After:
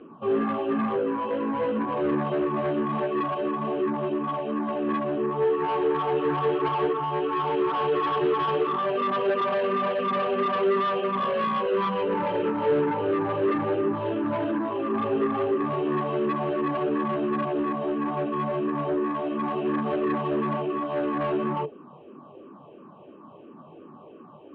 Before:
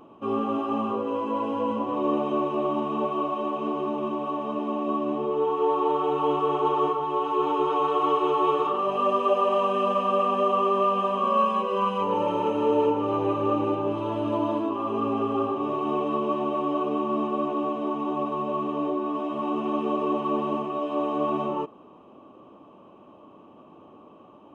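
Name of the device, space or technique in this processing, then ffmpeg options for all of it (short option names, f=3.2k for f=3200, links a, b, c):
barber-pole phaser into a guitar amplifier: -filter_complex "[0:a]bandreject=f=430:w=12,asplit=2[a][b];[b]afreqshift=-2.9[c];[a][c]amix=inputs=2:normalize=1,asoftclip=type=tanh:threshold=-27dB,highpass=88,equalizer=f=150:t=q:w=4:g=10,equalizer=f=230:t=q:w=4:g=3,equalizer=f=420:t=q:w=4:g=9,equalizer=f=1.6k:t=q:w=4:g=6,lowpass=f=3.7k:w=0.5412,lowpass=f=3.7k:w=1.3066,volume=3.5dB"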